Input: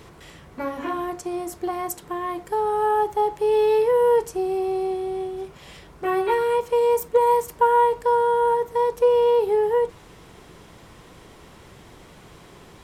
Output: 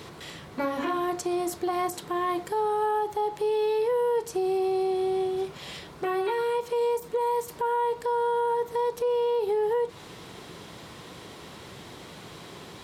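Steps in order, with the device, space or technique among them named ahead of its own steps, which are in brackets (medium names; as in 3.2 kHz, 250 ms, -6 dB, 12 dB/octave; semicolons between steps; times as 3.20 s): broadcast voice chain (high-pass 100 Hz 12 dB/octave; de-esser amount 60%; compression 4:1, threshold -26 dBFS, peak gain reduction 11 dB; peaking EQ 4 kHz +6 dB 0.67 oct; peak limiter -22.5 dBFS, peak gain reduction 7.5 dB); trim +3 dB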